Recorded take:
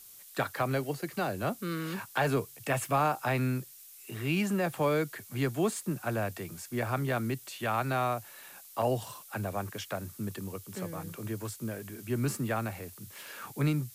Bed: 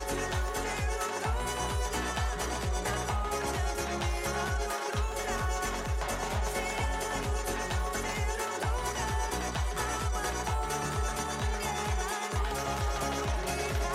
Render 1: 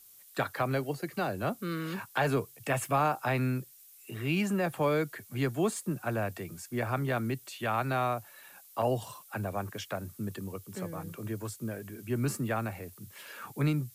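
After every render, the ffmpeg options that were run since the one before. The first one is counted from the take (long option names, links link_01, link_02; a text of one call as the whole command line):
ffmpeg -i in.wav -af "afftdn=noise_reduction=6:noise_floor=-52" out.wav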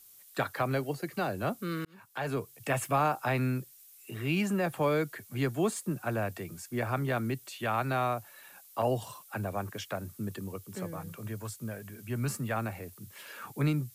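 ffmpeg -i in.wav -filter_complex "[0:a]asettb=1/sr,asplit=3[link_01][link_02][link_03];[link_01]atrim=end=10.964[link_04];[link_02]atrim=start=10.96:end=12.56,asetpts=PTS-STARTPTS,afade=type=in:duration=0.004:curve=qsin,afade=type=out:start_time=1.596:duration=0.004:curve=qsin,equalizer=frequency=330:width_type=o:width=0.77:gain=-7.5[link_05];[link_03]atrim=start=12.556[link_06];[link_04][link_05]acrossfade=duration=0.004:curve1=hsin:curve2=qsin[link_07];[link_07][link_06]acrossfade=duration=0.004:curve1=qsin:curve2=hsin,asplit=2[link_08][link_09];[link_08]atrim=end=1.85,asetpts=PTS-STARTPTS,afade=type=out:start_time=1.846:duration=0.004:curve=hsin[link_10];[link_09]atrim=start=1.85,asetpts=PTS-STARTPTS,afade=type=in:duration=0.79[link_11];[link_10][link_11]concat=n=2:v=0:a=1" out.wav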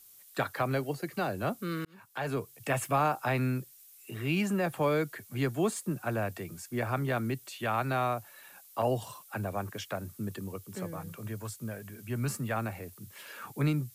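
ffmpeg -i in.wav -af anull out.wav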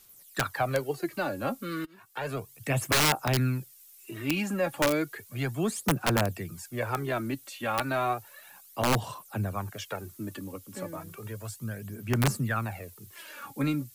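ffmpeg -i in.wav -af "aphaser=in_gain=1:out_gain=1:delay=3.7:decay=0.57:speed=0.33:type=sinusoidal,aeval=exprs='(mod(7.08*val(0)+1,2)-1)/7.08':channel_layout=same" out.wav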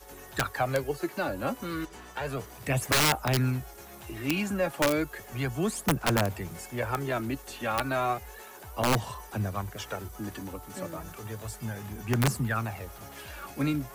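ffmpeg -i in.wav -i bed.wav -filter_complex "[1:a]volume=-15dB[link_01];[0:a][link_01]amix=inputs=2:normalize=0" out.wav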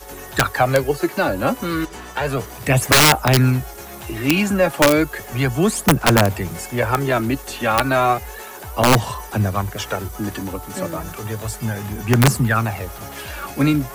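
ffmpeg -i in.wav -af "volume=11.5dB" out.wav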